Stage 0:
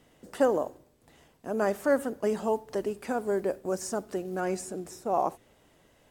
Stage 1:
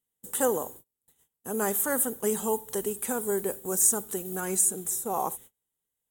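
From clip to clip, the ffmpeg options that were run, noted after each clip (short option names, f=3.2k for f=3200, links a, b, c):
-af "superequalizer=6b=0.562:8b=0.398:13b=2.24,aexciter=amount=12.6:drive=4.8:freq=7.1k,agate=range=-32dB:threshold=-46dB:ratio=16:detection=peak"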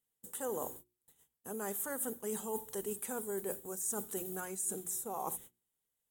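-af "bandreject=f=60:t=h:w=6,bandreject=f=120:t=h:w=6,bandreject=f=180:t=h:w=6,bandreject=f=240:t=h:w=6,bandreject=f=300:t=h:w=6,bandreject=f=360:t=h:w=6,areverse,acompressor=threshold=-34dB:ratio=6,areverse,volume=-1.5dB"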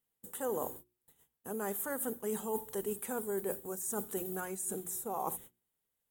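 -af "equalizer=f=6.7k:w=0.61:g=-6,volume=3dB"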